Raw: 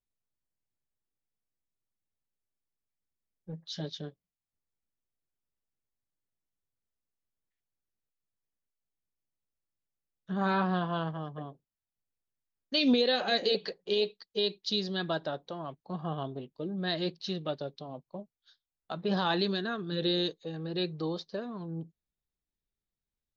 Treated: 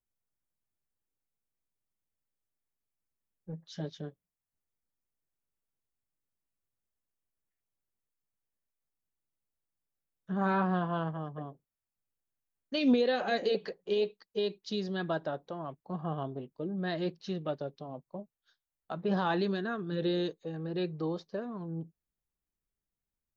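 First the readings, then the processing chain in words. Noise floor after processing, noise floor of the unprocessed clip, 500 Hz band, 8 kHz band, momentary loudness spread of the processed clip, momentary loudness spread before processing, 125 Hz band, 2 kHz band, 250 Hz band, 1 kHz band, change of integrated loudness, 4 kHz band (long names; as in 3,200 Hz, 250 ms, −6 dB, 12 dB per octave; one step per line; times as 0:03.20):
below −85 dBFS, below −85 dBFS, 0.0 dB, can't be measured, 15 LU, 15 LU, 0.0 dB, −2.0 dB, 0.0 dB, −0.5 dB, −1.5 dB, −9.5 dB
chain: parametric band 4,100 Hz −11 dB 1.1 octaves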